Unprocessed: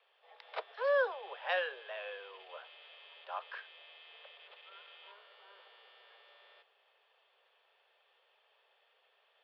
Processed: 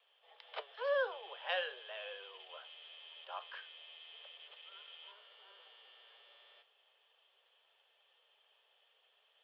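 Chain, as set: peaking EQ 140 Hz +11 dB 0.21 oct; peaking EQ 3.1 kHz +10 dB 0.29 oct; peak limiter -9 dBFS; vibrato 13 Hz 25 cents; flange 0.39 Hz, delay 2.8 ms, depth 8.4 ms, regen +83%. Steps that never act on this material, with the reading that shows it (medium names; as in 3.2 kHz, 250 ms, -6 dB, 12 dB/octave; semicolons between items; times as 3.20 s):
peaking EQ 140 Hz: input has nothing below 360 Hz; peak limiter -9 dBFS: peak at its input -18.0 dBFS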